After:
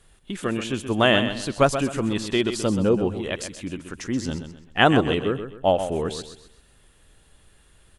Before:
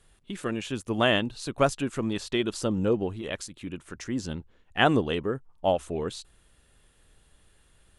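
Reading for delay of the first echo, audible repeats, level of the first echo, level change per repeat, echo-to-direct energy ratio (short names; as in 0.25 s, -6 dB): 0.129 s, 3, -9.5 dB, -9.5 dB, -9.0 dB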